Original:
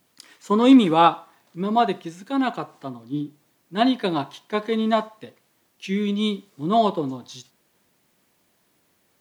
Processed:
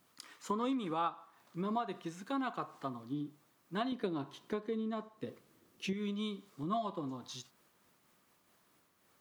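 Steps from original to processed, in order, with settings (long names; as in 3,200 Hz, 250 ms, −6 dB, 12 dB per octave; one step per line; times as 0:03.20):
0:03.92–0:05.93: low shelf with overshoot 570 Hz +7.5 dB, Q 1.5
0:06.63–0:07.07: notch comb filter 450 Hz
downward compressor 5 to 1, threshold −30 dBFS, peak gain reduction 18.5 dB
parametric band 1,200 Hz +7.5 dB 0.56 octaves
amplitude modulation by smooth noise, depth 50%
level −3.5 dB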